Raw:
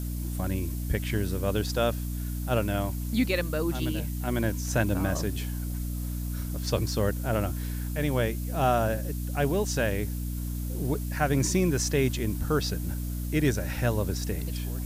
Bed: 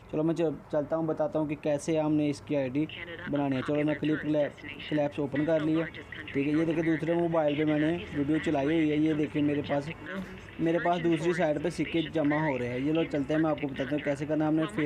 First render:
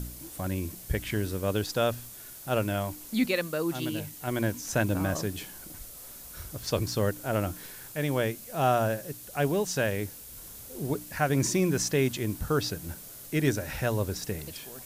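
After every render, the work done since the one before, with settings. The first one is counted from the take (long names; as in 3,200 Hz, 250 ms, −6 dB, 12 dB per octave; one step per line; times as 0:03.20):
hum removal 60 Hz, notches 5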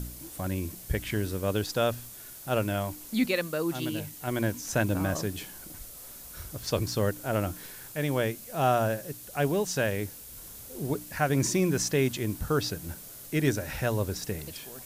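no processing that can be heard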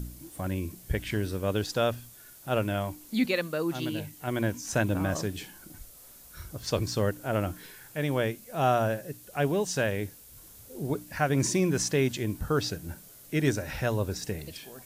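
noise reduction from a noise print 6 dB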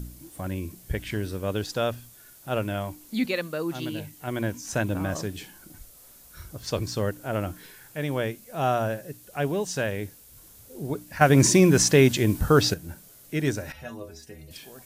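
0:11.21–0:12.74: clip gain +8.5 dB
0:13.72–0:14.51: stiff-string resonator 75 Hz, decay 0.4 s, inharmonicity 0.008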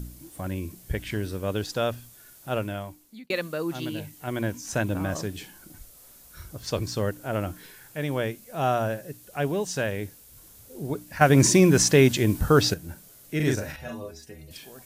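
0:02.50–0:03.30: fade out
0:13.36–0:14.11: double-tracking delay 39 ms −3 dB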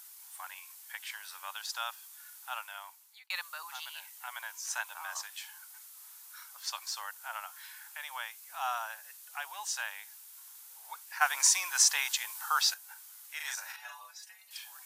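Chebyshev high-pass filter 850 Hz, order 5
dynamic equaliser 2,000 Hz, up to −5 dB, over −44 dBFS, Q 0.9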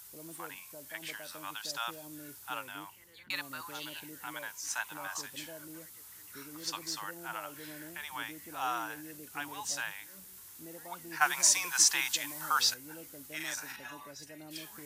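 mix in bed −22.5 dB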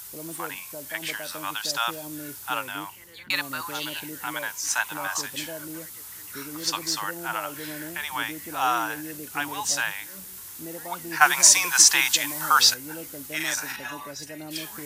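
level +10.5 dB
brickwall limiter −3 dBFS, peak gain reduction 2.5 dB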